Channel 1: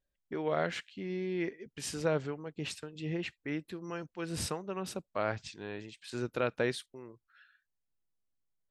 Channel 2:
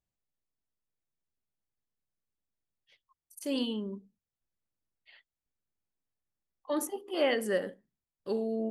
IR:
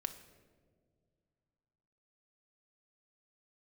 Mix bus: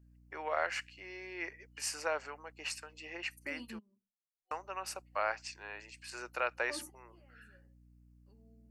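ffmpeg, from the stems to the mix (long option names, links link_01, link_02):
-filter_complex "[0:a]highpass=frequency=540:width=0.5412,highpass=frequency=540:width=1.3066,aeval=exprs='val(0)+0.000708*(sin(2*PI*60*n/s)+sin(2*PI*2*60*n/s)/2+sin(2*PI*3*60*n/s)/3+sin(2*PI*4*60*n/s)/4+sin(2*PI*5*60*n/s)/5)':channel_layout=same,volume=2.5dB,asplit=3[link_01][link_02][link_03];[link_01]atrim=end=3.79,asetpts=PTS-STARTPTS,afade=type=out:start_time=3.786:duration=0.004:curve=hsin[link_04];[link_02]atrim=start=3.79:end=4.51,asetpts=PTS-STARTPTS,volume=0[link_05];[link_03]atrim=start=4.51,asetpts=PTS-STARTPTS,afade=type=in:duration=0.004:curve=hsin[link_06];[link_04][link_05][link_06]concat=n=3:v=0:a=1,asplit=2[link_07][link_08];[1:a]acompressor=threshold=-33dB:ratio=6,flanger=delay=8.3:depth=1.1:regen=40:speed=1.5:shape=triangular,volume=-4dB[link_09];[link_08]apad=whole_len=384094[link_10];[link_09][link_10]sidechaingate=range=-22dB:threshold=-49dB:ratio=16:detection=peak[link_11];[link_07][link_11]amix=inputs=2:normalize=0,superequalizer=7b=0.501:8b=0.631:13b=0.251"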